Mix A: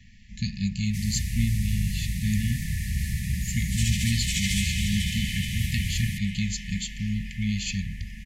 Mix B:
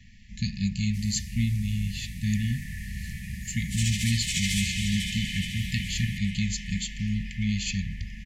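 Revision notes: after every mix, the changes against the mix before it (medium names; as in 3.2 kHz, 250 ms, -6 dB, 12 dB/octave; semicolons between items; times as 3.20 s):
first sound -9.5 dB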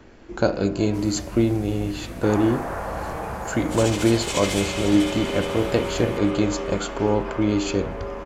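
master: remove brick-wall FIR band-stop 230–1700 Hz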